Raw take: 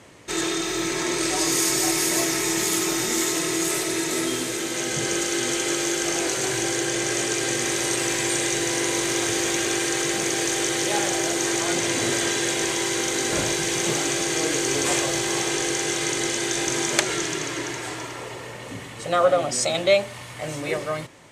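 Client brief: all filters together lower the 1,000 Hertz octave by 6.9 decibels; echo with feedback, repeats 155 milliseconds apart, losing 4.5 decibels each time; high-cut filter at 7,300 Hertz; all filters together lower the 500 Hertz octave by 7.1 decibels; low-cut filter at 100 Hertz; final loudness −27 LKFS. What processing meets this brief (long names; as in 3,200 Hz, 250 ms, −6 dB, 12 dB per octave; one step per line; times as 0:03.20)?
high-pass filter 100 Hz
low-pass filter 7,300 Hz
parametric band 500 Hz −8.5 dB
parametric band 1,000 Hz −6.5 dB
repeating echo 155 ms, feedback 60%, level −4.5 dB
level −3.5 dB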